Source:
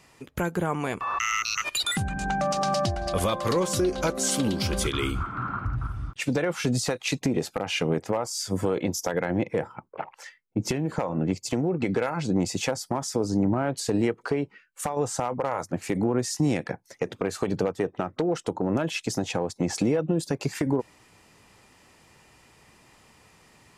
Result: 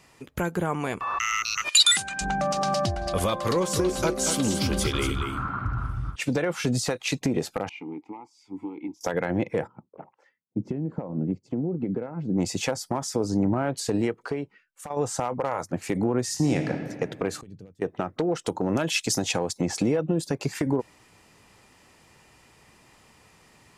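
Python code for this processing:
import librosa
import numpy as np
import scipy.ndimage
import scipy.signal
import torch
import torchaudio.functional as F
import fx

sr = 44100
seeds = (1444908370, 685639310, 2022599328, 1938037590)

y = fx.weighting(x, sr, curve='ITU-R 468', at=(1.68, 2.2), fade=0.02)
y = fx.echo_single(y, sr, ms=234, db=-7.0, at=(3.52, 6.16))
y = fx.vowel_filter(y, sr, vowel='u', at=(7.69, 9.01))
y = fx.bandpass_q(y, sr, hz=210.0, q=0.98, at=(9.66, 12.37), fade=0.02)
y = fx.reverb_throw(y, sr, start_s=16.23, length_s=0.48, rt60_s=2.0, drr_db=4.0)
y = fx.tone_stack(y, sr, knobs='10-0-1', at=(17.41, 17.82))
y = fx.high_shelf(y, sr, hz=2600.0, db=9.5, at=(18.44, 19.6), fade=0.02)
y = fx.edit(y, sr, fx.fade_out_to(start_s=13.83, length_s=1.07, floor_db=-11.0), tone=tone)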